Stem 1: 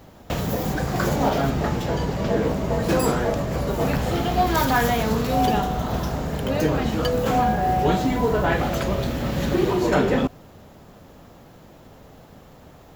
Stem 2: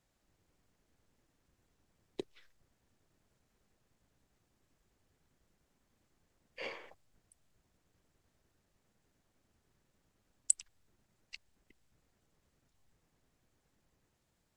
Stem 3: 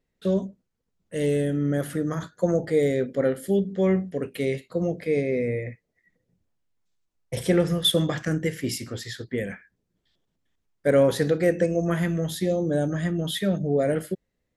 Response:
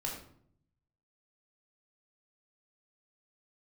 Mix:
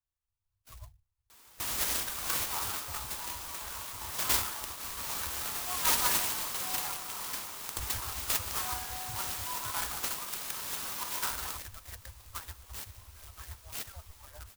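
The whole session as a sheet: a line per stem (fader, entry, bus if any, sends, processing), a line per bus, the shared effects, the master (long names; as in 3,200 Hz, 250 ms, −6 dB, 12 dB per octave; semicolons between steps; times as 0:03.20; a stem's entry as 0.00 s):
−1.5 dB, 1.30 s, no send, high-pass filter 980 Hz 12 dB per octave; spectral tilt +2.5 dB per octave
−10.5 dB, 0.00 s, no send, no processing
−1.0 dB, 0.45 s, no send, harmonic-percussive split with one part muted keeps percussive; treble cut that deepens with the level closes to 2,900 Hz, closed at −25.5 dBFS; low-shelf EQ 150 Hz +11.5 dB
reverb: not used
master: Chebyshev band-stop filter 100–1,000 Hz, order 3; parametric band 2,100 Hz −13 dB 0.92 octaves; converter with an unsteady clock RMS 0.13 ms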